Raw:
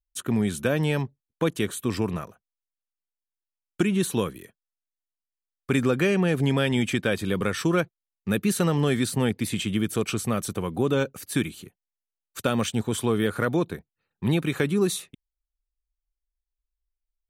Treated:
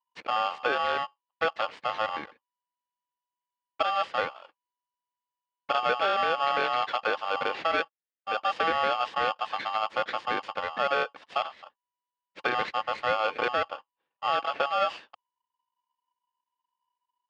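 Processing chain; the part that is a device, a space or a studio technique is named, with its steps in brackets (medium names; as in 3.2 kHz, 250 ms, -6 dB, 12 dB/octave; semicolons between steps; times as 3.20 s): 7.73–8.40 s: high-pass 170 Hz; ring modulator pedal into a guitar cabinet (polarity switched at an audio rate 980 Hz; cabinet simulation 97–3800 Hz, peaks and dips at 110 Hz -5 dB, 310 Hz +3 dB, 510 Hz +6 dB, 1 kHz +4 dB, 1.8 kHz +7 dB); trim -5.5 dB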